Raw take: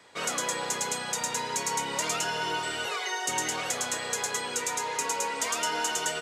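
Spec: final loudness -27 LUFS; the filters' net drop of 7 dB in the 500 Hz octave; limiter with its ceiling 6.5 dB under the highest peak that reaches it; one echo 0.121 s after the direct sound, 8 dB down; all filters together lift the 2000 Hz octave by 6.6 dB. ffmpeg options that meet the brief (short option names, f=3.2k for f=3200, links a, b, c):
-af "equalizer=f=500:t=o:g=-9,equalizer=f=2k:t=o:g=9,alimiter=limit=-20dB:level=0:latency=1,aecho=1:1:121:0.398,volume=0.5dB"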